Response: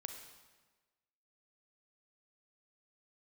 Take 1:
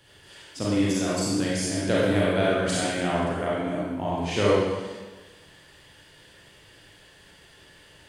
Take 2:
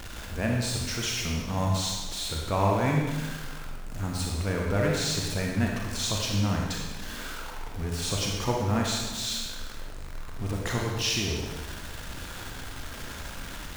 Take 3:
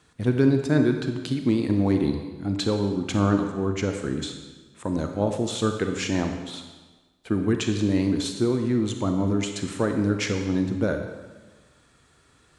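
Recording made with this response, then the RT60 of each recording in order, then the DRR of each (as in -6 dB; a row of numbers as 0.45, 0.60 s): 3; 1.3, 1.3, 1.3 s; -7.0, -1.5, 5.0 dB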